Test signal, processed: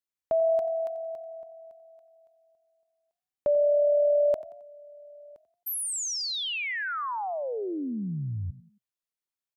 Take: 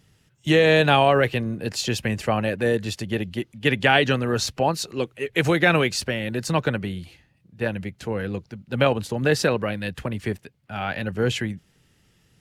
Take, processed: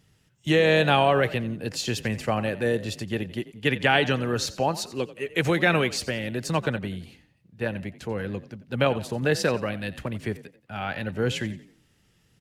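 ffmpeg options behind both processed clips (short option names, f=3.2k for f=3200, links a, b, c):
-filter_complex "[0:a]asplit=4[a][b][c][d];[b]adelay=89,afreqshift=39,volume=-17dB[e];[c]adelay=178,afreqshift=78,volume=-25.4dB[f];[d]adelay=267,afreqshift=117,volume=-33.8dB[g];[a][e][f][g]amix=inputs=4:normalize=0,volume=-3dB"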